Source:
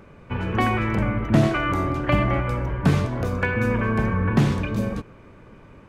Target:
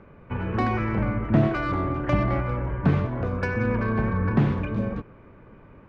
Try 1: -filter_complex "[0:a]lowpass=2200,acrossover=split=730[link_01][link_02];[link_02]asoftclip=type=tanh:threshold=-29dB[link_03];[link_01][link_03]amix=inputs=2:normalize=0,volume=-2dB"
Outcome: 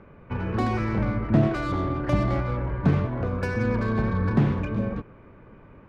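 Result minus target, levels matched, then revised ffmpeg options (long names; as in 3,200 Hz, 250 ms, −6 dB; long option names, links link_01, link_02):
soft clipping: distortion +8 dB
-filter_complex "[0:a]lowpass=2200,acrossover=split=730[link_01][link_02];[link_02]asoftclip=type=tanh:threshold=-21.5dB[link_03];[link_01][link_03]amix=inputs=2:normalize=0,volume=-2dB"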